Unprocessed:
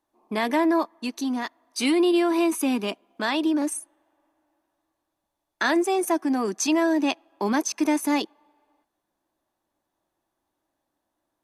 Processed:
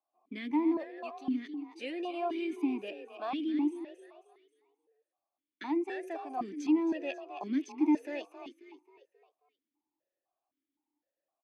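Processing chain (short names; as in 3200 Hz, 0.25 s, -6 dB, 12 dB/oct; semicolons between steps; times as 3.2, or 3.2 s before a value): frequency-shifting echo 0.268 s, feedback 42%, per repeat +30 Hz, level -9.5 dB; vowel sequencer 3.9 Hz; gain -1.5 dB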